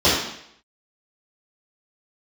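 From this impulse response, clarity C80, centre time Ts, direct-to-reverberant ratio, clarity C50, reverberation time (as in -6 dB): 5.0 dB, 57 ms, -13.0 dB, 1.0 dB, 0.70 s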